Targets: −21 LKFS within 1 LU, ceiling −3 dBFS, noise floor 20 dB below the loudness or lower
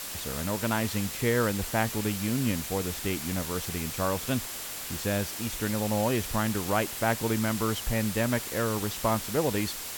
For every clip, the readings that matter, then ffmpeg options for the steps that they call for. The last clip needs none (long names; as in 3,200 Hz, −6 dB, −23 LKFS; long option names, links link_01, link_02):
interfering tone 7,500 Hz; level of the tone −50 dBFS; background noise floor −38 dBFS; target noise floor −49 dBFS; integrated loudness −29.0 LKFS; sample peak −12.5 dBFS; target loudness −21.0 LKFS
→ -af "bandreject=frequency=7500:width=30"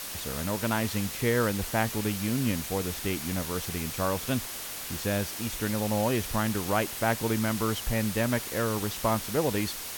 interfering tone none found; background noise floor −38 dBFS; target noise floor −49 dBFS
→ -af "afftdn=noise_reduction=11:noise_floor=-38"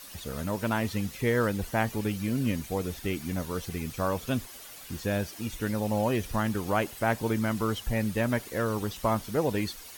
background noise floor −46 dBFS; target noise floor −50 dBFS
→ -af "afftdn=noise_reduction=6:noise_floor=-46"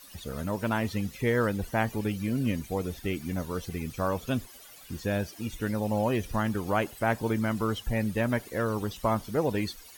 background noise floor −50 dBFS; integrated loudness −30.0 LKFS; sample peak −13.5 dBFS; target loudness −21.0 LKFS
→ -af "volume=9dB"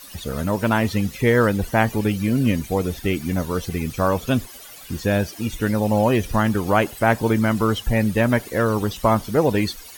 integrated loudness −21.0 LKFS; sample peak −4.5 dBFS; background noise floor −41 dBFS